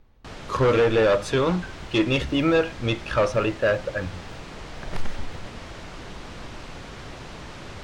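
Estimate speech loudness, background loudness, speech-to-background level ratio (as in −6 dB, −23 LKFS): −23.0 LKFS, −39.5 LKFS, 16.5 dB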